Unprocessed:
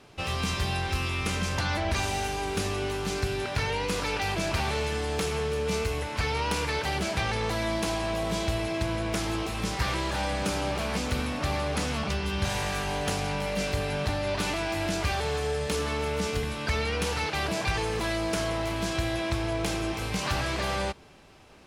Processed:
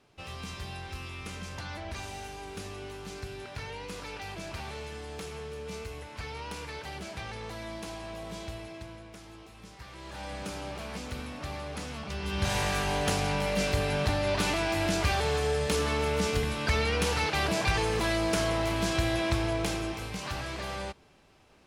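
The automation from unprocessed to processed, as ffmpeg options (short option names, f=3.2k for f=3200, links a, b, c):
-af "volume=9dB,afade=t=out:st=8.47:d=0.65:silence=0.398107,afade=t=in:st=9.91:d=0.43:silence=0.316228,afade=t=in:st=12.07:d=0.5:silence=0.316228,afade=t=out:st=19.34:d=0.81:silence=0.398107"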